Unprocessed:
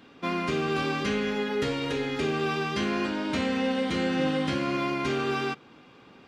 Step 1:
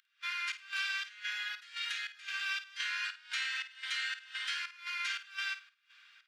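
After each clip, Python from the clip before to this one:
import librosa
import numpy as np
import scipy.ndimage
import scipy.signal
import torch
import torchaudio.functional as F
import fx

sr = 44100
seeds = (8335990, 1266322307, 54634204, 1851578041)

y = fx.volume_shaper(x, sr, bpm=116, per_beat=1, depth_db=-23, release_ms=208.0, shape='slow start')
y = scipy.signal.sosfilt(scipy.signal.cheby1(4, 1.0, 1500.0, 'highpass', fs=sr, output='sos'), y)
y = fx.room_flutter(y, sr, wall_m=8.9, rt60_s=0.26)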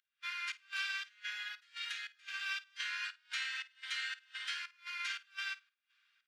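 y = fx.upward_expand(x, sr, threshold_db=-57.0, expansion=1.5)
y = y * 10.0 ** (-2.0 / 20.0)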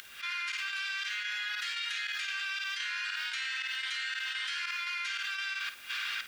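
y = fx.env_flatten(x, sr, amount_pct=100)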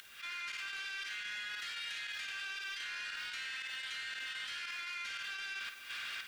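y = 10.0 ** (-30.5 / 20.0) * np.tanh(x / 10.0 ** (-30.5 / 20.0))
y = y + 10.0 ** (-10.5 / 20.0) * np.pad(y, (int(200 * sr / 1000.0), 0))[:len(y)]
y = y * 10.0 ** (-5.0 / 20.0)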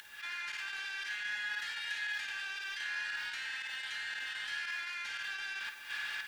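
y = fx.small_body(x, sr, hz=(870.0, 1700.0), ring_ms=55, db=16)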